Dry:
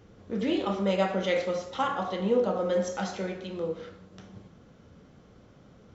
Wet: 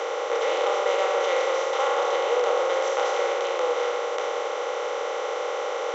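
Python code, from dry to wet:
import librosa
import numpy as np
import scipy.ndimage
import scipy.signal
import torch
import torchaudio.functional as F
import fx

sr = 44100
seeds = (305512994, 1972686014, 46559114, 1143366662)

y = fx.bin_compress(x, sr, power=0.2)
y = scipy.signal.sosfilt(scipy.signal.ellip(4, 1.0, 50, 430.0, 'highpass', fs=sr, output='sos'), y)
y = y * 10.0 ** (-2.5 / 20.0)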